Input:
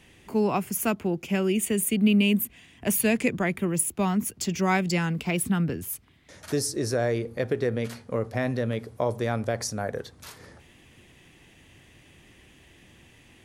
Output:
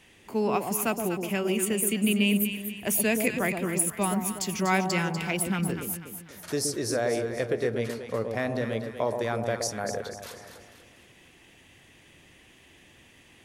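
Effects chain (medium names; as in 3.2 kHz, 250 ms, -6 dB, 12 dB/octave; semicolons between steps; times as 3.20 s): bass shelf 300 Hz -7 dB; on a send: echo whose repeats swap between lows and highs 122 ms, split 920 Hz, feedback 65%, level -4.5 dB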